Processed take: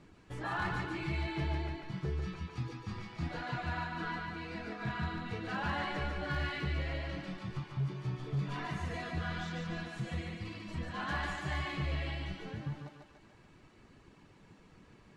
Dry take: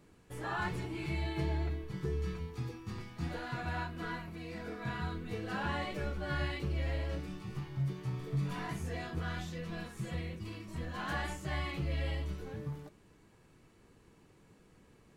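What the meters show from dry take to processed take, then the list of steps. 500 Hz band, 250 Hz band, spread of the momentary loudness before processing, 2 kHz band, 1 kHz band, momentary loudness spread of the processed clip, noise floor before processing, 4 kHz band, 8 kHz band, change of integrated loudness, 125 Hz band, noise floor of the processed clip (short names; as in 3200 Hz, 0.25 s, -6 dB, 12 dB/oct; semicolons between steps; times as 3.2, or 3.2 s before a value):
-1.5 dB, 0.0 dB, 7 LU, +2.5 dB, +2.0 dB, 6 LU, -63 dBFS, +2.0 dB, -3.0 dB, +0.5 dB, -0.5 dB, -61 dBFS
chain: reverb removal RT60 0.72 s; LPF 5500 Hz 12 dB/oct; bell 460 Hz -5 dB 0.45 oct; in parallel at -3 dB: compressor, threshold -48 dBFS, peak gain reduction 17 dB; on the sum: hard clip -28.5 dBFS, distortion -24 dB; thinning echo 0.145 s, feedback 58%, high-pass 290 Hz, level -3 dB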